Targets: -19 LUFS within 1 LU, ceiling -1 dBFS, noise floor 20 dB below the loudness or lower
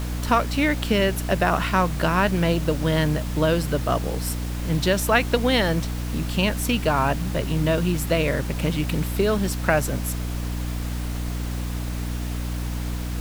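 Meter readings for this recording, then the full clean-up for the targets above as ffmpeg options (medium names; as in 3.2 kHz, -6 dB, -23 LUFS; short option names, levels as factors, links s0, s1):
hum 60 Hz; highest harmonic 300 Hz; hum level -25 dBFS; noise floor -28 dBFS; noise floor target -44 dBFS; loudness -23.5 LUFS; peak level -4.0 dBFS; loudness target -19.0 LUFS
-> -af "bandreject=f=60:t=h:w=4,bandreject=f=120:t=h:w=4,bandreject=f=180:t=h:w=4,bandreject=f=240:t=h:w=4,bandreject=f=300:t=h:w=4"
-af "afftdn=nr=16:nf=-28"
-af "volume=1.68,alimiter=limit=0.891:level=0:latency=1"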